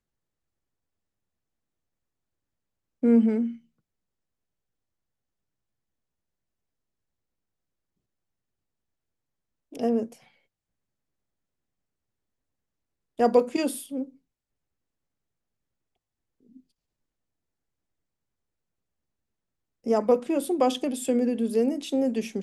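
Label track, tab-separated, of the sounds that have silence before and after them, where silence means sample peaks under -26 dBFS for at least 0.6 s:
3.030000	3.470000	sound
9.790000	10.040000	sound
13.200000	14.030000	sound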